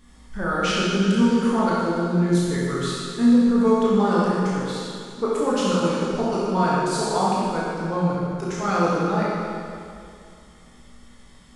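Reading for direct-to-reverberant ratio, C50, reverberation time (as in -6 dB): -7.5 dB, -3.5 dB, 2.4 s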